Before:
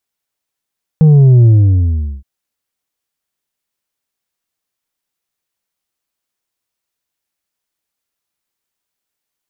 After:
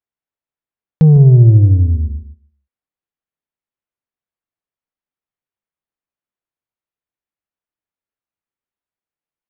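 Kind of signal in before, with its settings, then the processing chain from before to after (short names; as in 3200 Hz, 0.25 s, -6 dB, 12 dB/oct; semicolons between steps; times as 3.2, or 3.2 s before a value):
sub drop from 160 Hz, over 1.22 s, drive 4.5 dB, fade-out 0.77 s, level -4 dB
air absorption 460 m; on a send: feedback echo 0.151 s, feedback 25%, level -11 dB; on the sum: gate -34 dBFS, range -7 dB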